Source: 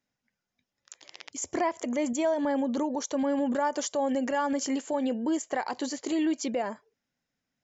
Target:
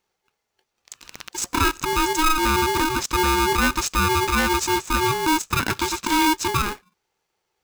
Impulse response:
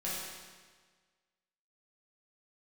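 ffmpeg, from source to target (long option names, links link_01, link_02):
-filter_complex "[0:a]asettb=1/sr,asplit=3[link_01][link_02][link_03];[link_01]atrim=end=5.624[link_04];[link_02]atrim=start=5.62:end=6.27,asetpts=PTS-STARTPTS,afade=type=in:duration=0.004:curve=qsin,afade=type=out:start_time=0.646:duration=0.004:curve=qsin,equalizer=frequency=2300:width=0.8:gain=6.5[link_05];[link_03]atrim=start=6.266[link_06];[link_04][link_05]acrossfade=duration=0.004:curve1=hsin:curve2=qsin[link_07];[link_07][link_06]acrossfade=duration=0.004:curve1=qsin:curve2=hsin,aeval=exprs='val(0)*sgn(sin(2*PI*630*n/s))':channel_layout=same,volume=7.5dB"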